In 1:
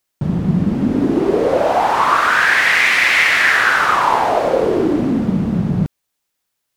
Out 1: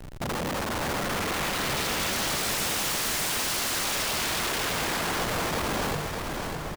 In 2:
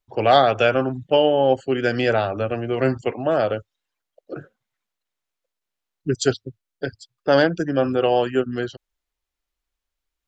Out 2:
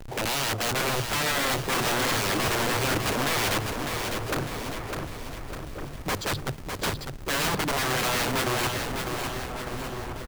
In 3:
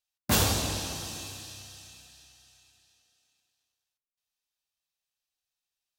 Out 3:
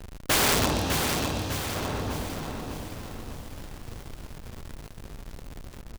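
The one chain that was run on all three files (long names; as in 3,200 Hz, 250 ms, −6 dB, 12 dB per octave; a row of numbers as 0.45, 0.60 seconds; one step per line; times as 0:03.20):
low-pass filter 1,400 Hz 6 dB per octave
mains-hum notches 50/100/150/200 Hz
dynamic equaliser 150 Hz, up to +6 dB, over −33 dBFS, Q 1.2
reversed playback
downward compressor 20 to 1, threshold −22 dBFS
reversed playback
wrap-around overflow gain 27 dB
surface crackle 150 per second −48 dBFS
in parallel at −6 dB: comparator with hysteresis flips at −52.5 dBFS
on the sum: slap from a distant wall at 250 metres, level −7 dB
feedback echo at a low word length 603 ms, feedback 55%, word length 9 bits, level −5.5 dB
loudness normalisation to −27 LKFS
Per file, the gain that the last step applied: −1.0, +3.0, +9.0 decibels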